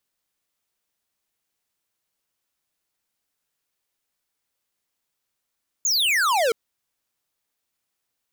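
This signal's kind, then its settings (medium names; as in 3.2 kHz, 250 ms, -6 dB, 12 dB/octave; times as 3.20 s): laser zap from 7.1 kHz, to 430 Hz, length 0.67 s square, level -20 dB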